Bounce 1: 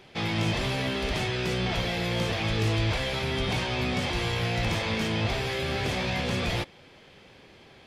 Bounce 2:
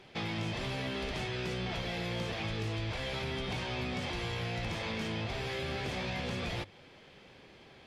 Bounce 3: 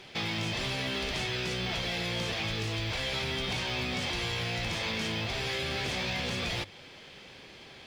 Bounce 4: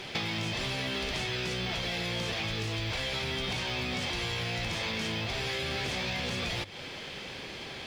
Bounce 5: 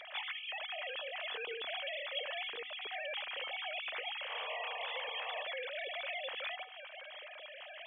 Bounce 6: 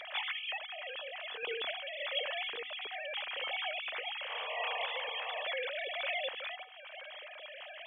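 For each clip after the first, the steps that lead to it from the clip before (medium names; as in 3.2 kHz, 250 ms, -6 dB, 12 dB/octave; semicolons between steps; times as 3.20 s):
treble shelf 11 kHz -8.5 dB; compression 3:1, threshold -31 dBFS, peak gain reduction 7.5 dB; hum notches 50/100 Hz; trim -3 dB
peaking EQ 6 kHz +8 dB 3 oct; in parallel at -2 dB: peak limiter -30.5 dBFS, peak gain reduction 9.5 dB; on the sum: short-mantissa float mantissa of 4-bit; trim -2 dB
compression 6:1, threshold -39 dBFS, peak gain reduction 9.5 dB; trim +8.5 dB
formants replaced by sine waves; painted sound noise, 4.29–5.44 s, 440–1200 Hz -38 dBFS; feedback comb 250 Hz, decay 0.57 s, harmonics odd, mix 70%; trim +1.5 dB
random-step tremolo; trim +5 dB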